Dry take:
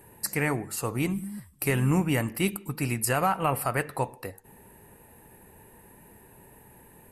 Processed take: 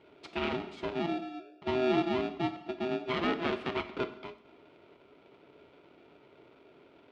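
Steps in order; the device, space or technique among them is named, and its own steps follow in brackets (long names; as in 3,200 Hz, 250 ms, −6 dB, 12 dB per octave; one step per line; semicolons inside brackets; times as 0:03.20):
0:00.99–0:03.09: Butterworth low-pass 860 Hz 48 dB per octave
ring modulator pedal into a guitar cabinet (ring modulator with a square carrier 510 Hz; loudspeaker in its box 93–3,500 Hz, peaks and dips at 110 Hz −6 dB, 280 Hz +3 dB, 400 Hz +6 dB, 780 Hz −5 dB, 1,100 Hz −5 dB, 1,700 Hz −9 dB)
reverb whose tail is shaped and stops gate 300 ms falling, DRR 10.5 dB
level −4.5 dB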